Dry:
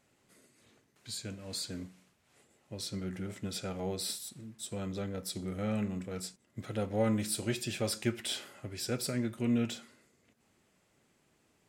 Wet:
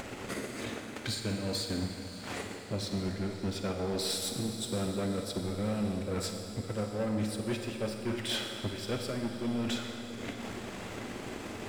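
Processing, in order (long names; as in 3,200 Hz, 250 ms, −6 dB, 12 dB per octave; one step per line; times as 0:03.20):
low-pass filter 2,500 Hz 6 dB per octave
parametric band 150 Hz −13.5 dB 0.27 octaves
hum removal 82.03 Hz, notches 39
in parallel at −1 dB: upward compression, threshold −38 dBFS
on the sum: transient designer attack +11 dB, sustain −4 dB
reversed playback
downward compressor 6 to 1, threshold −40 dBFS, peak gain reduction 26 dB
reversed playback
leveller curve on the samples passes 3
feedback delay with all-pass diffusion 602 ms, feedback 62%, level −13.5 dB
convolution reverb RT60 2.3 s, pre-delay 39 ms, DRR 4.5 dB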